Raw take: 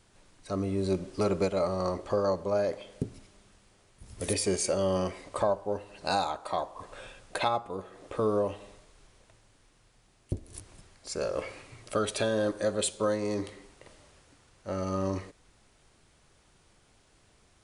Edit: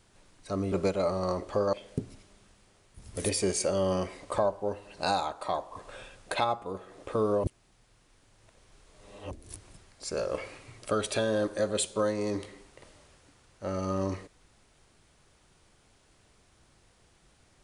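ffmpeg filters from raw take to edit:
-filter_complex "[0:a]asplit=5[a][b][c][d][e];[a]atrim=end=0.722[f];[b]atrim=start=1.288:end=2.302[g];[c]atrim=start=2.768:end=8.482[h];[d]atrim=start=8.478:end=10.352,asetpts=PTS-STARTPTS,areverse[i];[e]atrim=start=10.348[j];[f][g]acrossfade=d=0.004:c1=hsin:c2=hsin[k];[k][h]acrossfade=d=0.004:c1=hsin:c2=hsin[l];[l][i]acrossfade=d=0.004:c1=hsin:c2=hsin[m];[m][j]acrossfade=d=0.004:c1=hsin:c2=hsin"

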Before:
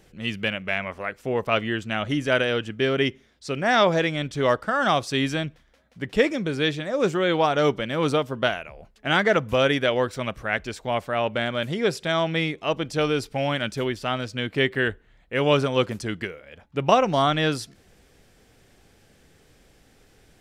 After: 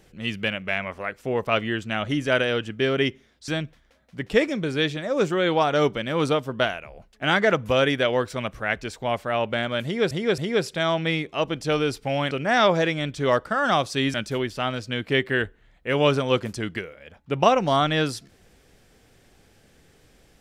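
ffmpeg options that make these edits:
-filter_complex "[0:a]asplit=6[a][b][c][d][e][f];[a]atrim=end=3.482[g];[b]atrim=start=5.308:end=11.942[h];[c]atrim=start=11.668:end=11.942[i];[d]atrim=start=11.668:end=13.602[j];[e]atrim=start=3.478:end=5.312[k];[f]atrim=start=13.598[l];[g][h]acrossfade=d=0.004:c1=hsin:c2=hsin[m];[m][i]acrossfade=d=0.004:c1=hsin:c2=hsin[n];[n][j]acrossfade=d=0.004:c1=hsin:c2=hsin[o];[o][k]acrossfade=d=0.004:c1=hsin:c2=hsin[p];[p][l]acrossfade=d=0.004:c1=hsin:c2=hsin"

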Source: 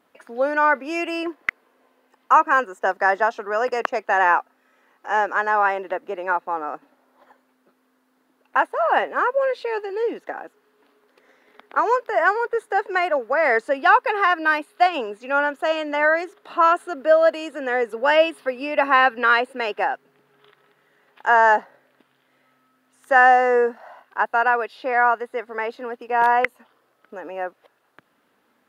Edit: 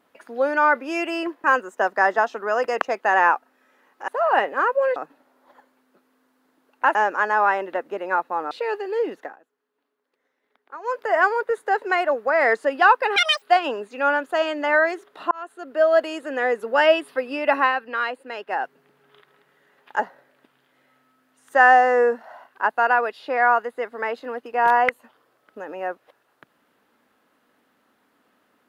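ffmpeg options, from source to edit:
-filter_complex "[0:a]asplit=14[a][b][c][d][e][f][g][h][i][j][k][l][m][n];[a]atrim=end=1.442[o];[b]atrim=start=2.478:end=5.122[p];[c]atrim=start=8.668:end=9.552[q];[d]atrim=start=6.678:end=8.672[r];[e]atrim=start=5.118:end=6.682[s];[f]atrim=start=9.548:end=10.4,asetpts=PTS-STARTPTS,afade=t=out:st=0.682:d=0.17:silence=0.133352[t];[g]atrim=start=10.4:end=11.87,asetpts=PTS-STARTPTS,volume=-17.5dB[u];[h]atrim=start=11.87:end=14.204,asetpts=PTS-STARTPTS,afade=t=in:d=0.17:silence=0.133352[v];[i]atrim=start=14.2:end=14.72,asetpts=PTS-STARTPTS,asetrate=87759,aresample=44100[w];[j]atrim=start=14.716:end=16.61,asetpts=PTS-STARTPTS,afade=t=out:st=1.89:d=0.004:c=hsin[x];[k]atrim=start=16.61:end=19.03,asetpts=PTS-STARTPTS,afade=t=in:d=0.7,afade=t=out:st=2.27:d=0.15:silence=0.398107[y];[l]atrim=start=19.03:end=19.78,asetpts=PTS-STARTPTS,volume=-8dB[z];[m]atrim=start=19.78:end=21.292,asetpts=PTS-STARTPTS,afade=t=in:d=0.15:silence=0.398107[aa];[n]atrim=start=21.548[ab];[o][p]acrossfade=d=0.004:c1=hsin:c2=hsin[ac];[ac][q]acrossfade=d=0.004:c1=hsin:c2=hsin[ad];[ad][r]acrossfade=d=0.004:c1=hsin:c2=hsin[ae];[ae][s]acrossfade=d=0.004:c1=hsin:c2=hsin[af];[t][u][v]concat=n=3:v=0:a=1[ag];[af][ag]acrossfade=d=0.004:c1=hsin:c2=hsin[ah];[ah][w]acrossfade=d=0.004:c1=hsin:c2=hsin[ai];[x][y][z][aa]concat=n=4:v=0:a=1[aj];[ai][aj]acrossfade=d=0.004:c1=hsin:c2=hsin[ak];[ak][ab]acrossfade=d=0.004:c1=hsin:c2=hsin"

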